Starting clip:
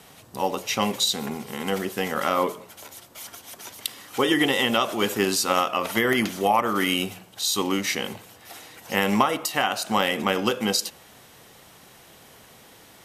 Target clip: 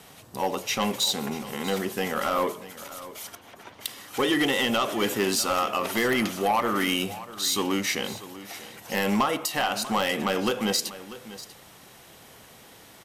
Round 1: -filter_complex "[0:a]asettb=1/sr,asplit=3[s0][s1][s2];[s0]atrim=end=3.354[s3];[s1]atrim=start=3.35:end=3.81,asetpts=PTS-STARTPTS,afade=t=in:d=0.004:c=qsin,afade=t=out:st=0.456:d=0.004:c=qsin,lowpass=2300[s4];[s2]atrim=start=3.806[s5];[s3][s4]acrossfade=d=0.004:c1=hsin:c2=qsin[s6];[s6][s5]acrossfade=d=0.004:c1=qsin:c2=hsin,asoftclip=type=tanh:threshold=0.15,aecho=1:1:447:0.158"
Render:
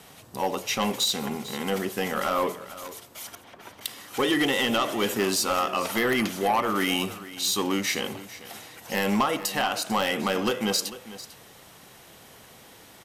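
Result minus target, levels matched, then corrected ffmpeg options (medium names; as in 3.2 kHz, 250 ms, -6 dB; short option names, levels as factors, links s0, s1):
echo 195 ms early
-filter_complex "[0:a]asettb=1/sr,asplit=3[s0][s1][s2];[s0]atrim=end=3.354[s3];[s1]atrim=start=3.35:end=3.81,asetpts=PTS-STARTPTS,afade=t=in:d=0.004:c=qsin,afade=t=out:st=0.456:d=0.004:c=qsin,lowpass=2300[s4];[s2]atrim=start=3.806[s5];[s3][s4]acrossfade=d=0.004:c1=hsin:c2=qsin[s6];[s6][s5]acrossfade=d=0.004:c1=qsin:c2=hsin,asoftclip=type=tanh:threshold=0.15,aecho=1:1:642:0.158"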